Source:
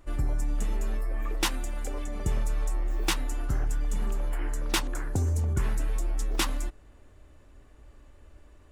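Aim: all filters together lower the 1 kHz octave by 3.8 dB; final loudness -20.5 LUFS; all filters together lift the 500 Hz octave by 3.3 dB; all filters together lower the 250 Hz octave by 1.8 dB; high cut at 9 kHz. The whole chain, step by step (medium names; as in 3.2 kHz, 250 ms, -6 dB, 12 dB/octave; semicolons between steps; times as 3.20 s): low-pass 9 kHz; peaking EQ 250 Hz -5.5 dB; peaking EQ 500 Hz +8 dB; peaking EQ 1 kHz -7 dB; trim +11 dB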